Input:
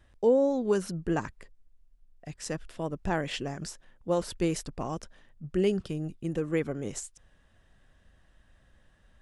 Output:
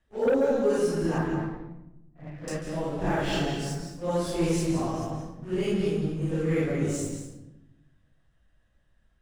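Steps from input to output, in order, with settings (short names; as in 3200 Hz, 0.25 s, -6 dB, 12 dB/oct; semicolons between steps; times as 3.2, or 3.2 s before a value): phase scrambler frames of 0.2 s; 1.18–2.48 LPF 2100 Hz 24 dB/oct; sample leveller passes 2; on a send: reverb RT60 0.90 s, pre-delay 0.141 s, DRR 3.5 dB; on the sum: gain -5.5 dB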